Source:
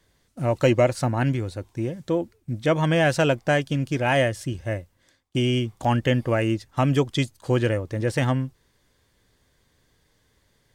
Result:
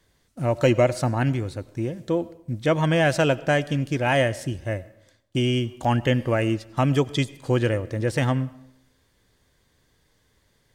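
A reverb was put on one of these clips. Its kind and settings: algorithmic reverb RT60 0.78 s, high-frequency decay 0.7×, pre-delay 55 ms, DRR 19 dB

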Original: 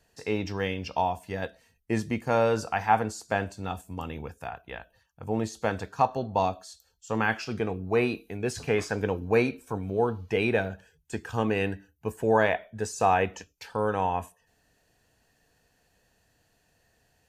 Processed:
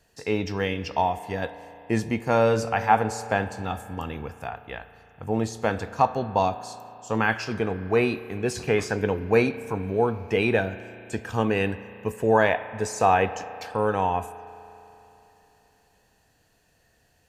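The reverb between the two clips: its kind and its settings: spring tank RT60 3.3 s, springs 35 ms, chirp 40 ms, DRR 13.5 dB; trim +3 dB

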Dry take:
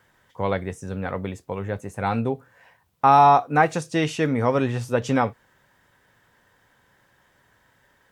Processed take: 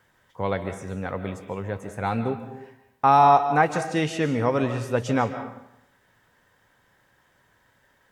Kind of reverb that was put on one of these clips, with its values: algorithmic reverb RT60 0.79 s, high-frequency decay 0.75×, pre-delay 105 ms, DRR 9 dB; trim -2 dB

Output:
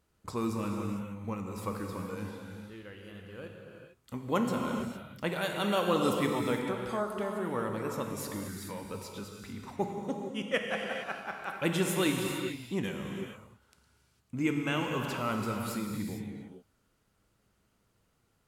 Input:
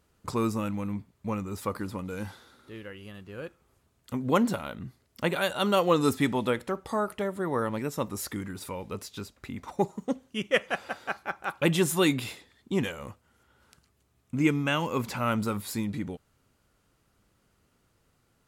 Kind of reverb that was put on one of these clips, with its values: gated-style reverb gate 480 ms flat, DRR 1.5 dB; trim -6 dB

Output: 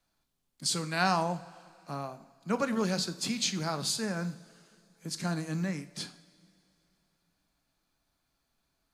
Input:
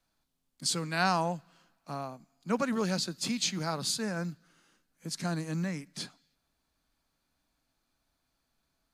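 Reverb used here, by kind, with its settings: two-slope reverb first 0.46 s, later 3 s, from -18 dB, DRR 9.5 dB

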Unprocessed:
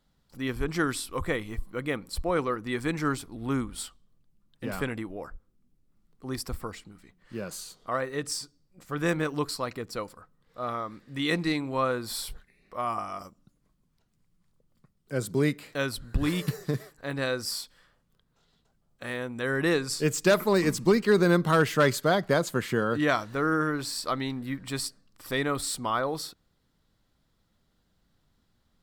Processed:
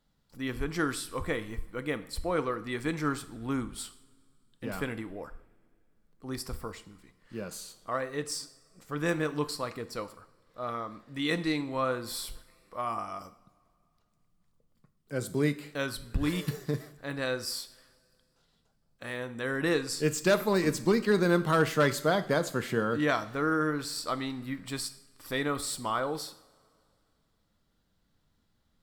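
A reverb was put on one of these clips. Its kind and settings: two-slope reverb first 0.56 s, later 2.5 s, from -20 dB, DRR 10.5 dB; trim -3 dB

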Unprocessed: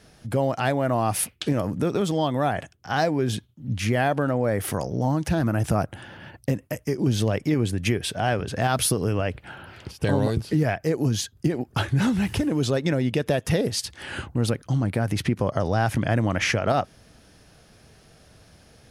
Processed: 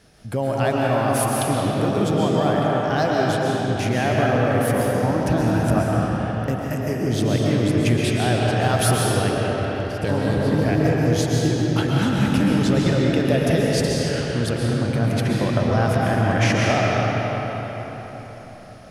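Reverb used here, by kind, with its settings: algorithmic reverb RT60 4.7 s, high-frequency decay 0.65×, pre-delay 90 ms, DRR -4 dB; trim -1 dB

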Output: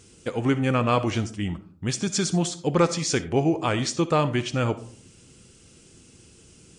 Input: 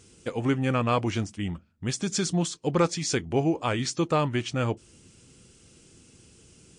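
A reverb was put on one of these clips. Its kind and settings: algorithmic reverb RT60 0.51 s, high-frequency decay 0.35×, pre-delay 20 ms, DRR 13 dB; trim +2.5 dB

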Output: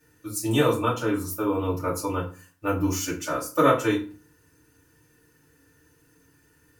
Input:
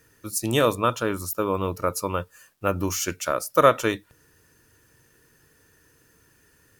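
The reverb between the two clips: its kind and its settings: FDN reverb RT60 0.36 s, low-frequency decay 1.45×, high-frequency decay 0.75×, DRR -7.5 dB; trim -10.5 dB

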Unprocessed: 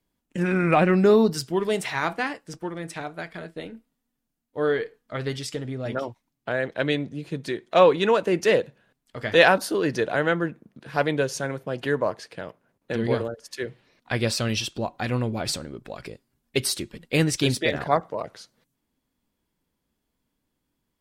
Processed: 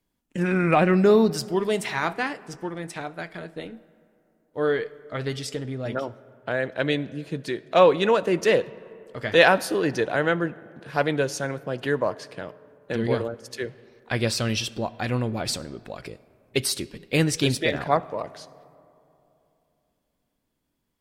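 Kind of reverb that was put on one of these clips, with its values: algorithmic reverb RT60 3 s, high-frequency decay 0.4×, pre-delay 25 ms, DRR 20 dB

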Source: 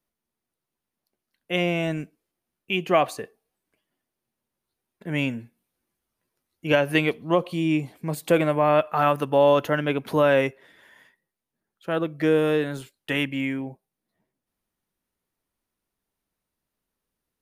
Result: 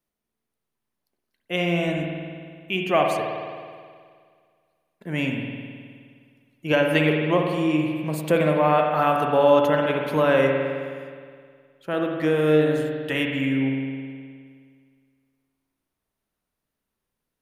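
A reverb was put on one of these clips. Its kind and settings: spring tank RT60 2 s, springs 52 ms, chirp 45 ms, DRR 1.5 dB; trim -1 dB

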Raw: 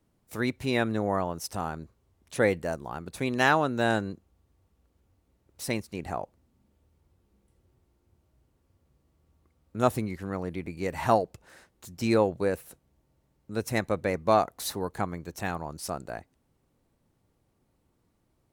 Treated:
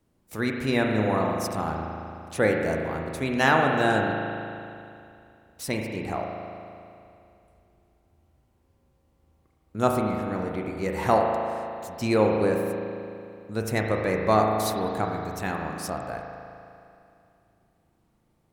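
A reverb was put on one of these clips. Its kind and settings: spring tank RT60 2.6 s, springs 37 ms, chirp 80 ms, DRR 1 dB; trim +1 dB

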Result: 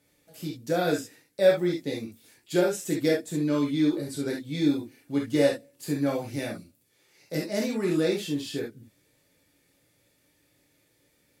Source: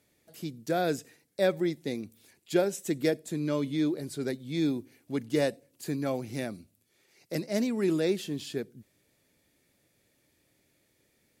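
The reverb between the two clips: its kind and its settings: gated-style reverb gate 90 ms flat, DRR -2.5 dB; trim -1 dB

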